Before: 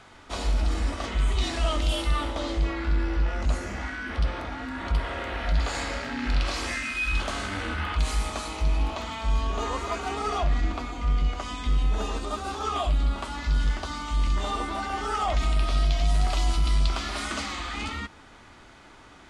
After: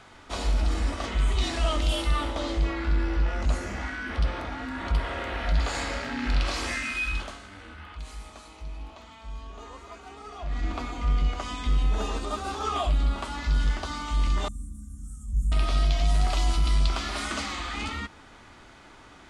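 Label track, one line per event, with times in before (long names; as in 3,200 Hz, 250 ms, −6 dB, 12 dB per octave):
6.960000	10.810000	duck −14 dB, fades 0.43 s linear
14.480000	15.520000	inverse Chebyshev band-stop filter 380–4,700 Hz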